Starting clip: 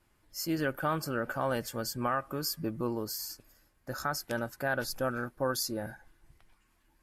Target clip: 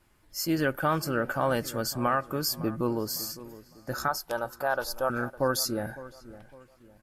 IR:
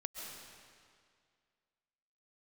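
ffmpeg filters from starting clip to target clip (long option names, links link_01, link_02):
-filter_complex "[0:a]asettb=1/sr,asplit=3[link_01][link_02][link_03];[link_01]atrim=end=4.084[link_04];[link_02]atrim=start=4.08:end=5.1,asetpts=PTS-STARTPTS,afade=type=in:duration=0.004:curve=qsin,afade=type=out:start_time=1.016:duration=0.004:curve=qsin,equalizer=frequency=125:width_type=o:width=1:gain=-12,equalizer=frequency=250:width_type=o:width=1:gain=-10,equalizer=frequency=1000:width_type=o:width=1:gain=7,equalizer=frequency=2000:width_type=o:width=1:gain=-10,equalizer=frequency=8000:width_type=o:width=1:gain=-4[link_05];[link_03]atrim=start=5.096[link_06];[link_04][link_05]acrossfade=duration=0.004:curve1=hsin:curve2=qsin[link_07];[link_07][link_06]acrossfade=duration=0.004:curve1=qsin:curve2=hsin,asplit=2[link_08][link_09];[link_09]adelay=557,lowpass=frequency=1500:poles=1,volume=-16dB,asplit=2[link_10][link_11];[link_11]adelay=557,lowpass=frequency=1500:poles=1,volume=0.39,asplit=2[link_12][link_13];[link_13]adelay=557,lowpass=frequency=1500:poles=1,volume=0.39[link_14];[link_08][link_10][link_12][link_14]amix=inputs=4:normalize=0,volume=4.5dB"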